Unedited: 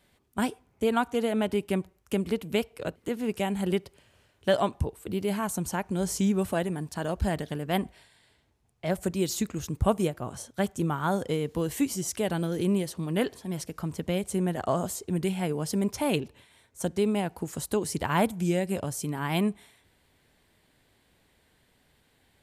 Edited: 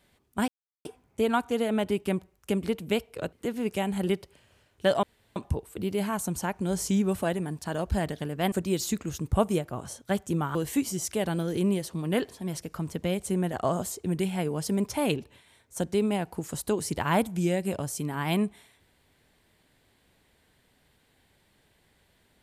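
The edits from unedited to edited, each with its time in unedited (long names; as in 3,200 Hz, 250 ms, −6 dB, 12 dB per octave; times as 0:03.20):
0:00.48: splice in silence 0.37 s
0:04.66: splice in room tone 0.33 s
0:07.82–0:09.01: remove
0:11.04–0:11.59: remove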